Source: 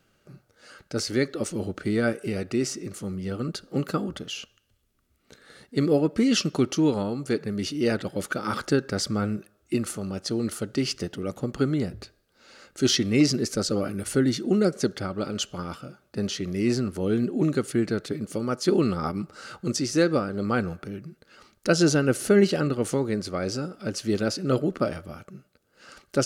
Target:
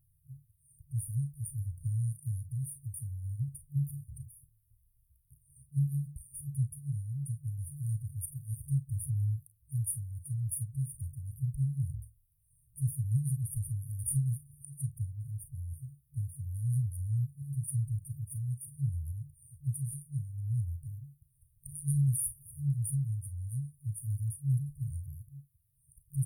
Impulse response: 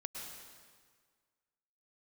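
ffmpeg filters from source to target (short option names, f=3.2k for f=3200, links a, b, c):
-af "afftfilt=real='re*(1-between(b*sr/4096,150,8900))':imag='im*(1-between(b*sr/4096,150,8900))':win_size=4096:overlap=0.75,acontrast=78,aecho=1:1:35|48:0.266|0.178,volume=-4dB"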